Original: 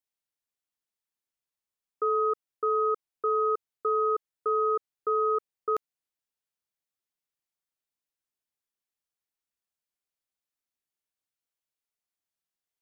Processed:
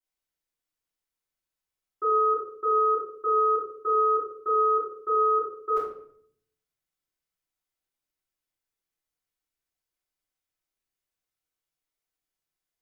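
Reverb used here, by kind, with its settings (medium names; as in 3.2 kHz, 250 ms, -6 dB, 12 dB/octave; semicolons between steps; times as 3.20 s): simulated room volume 96 m³, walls mixed, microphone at 3.8 m; trim -10.5 dB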